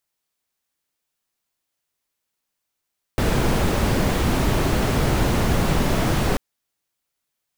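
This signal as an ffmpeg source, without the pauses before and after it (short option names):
-f lavfi -i "anoisesrc=c=brown:a=0.525:d=3.19:r=44100:seed=1"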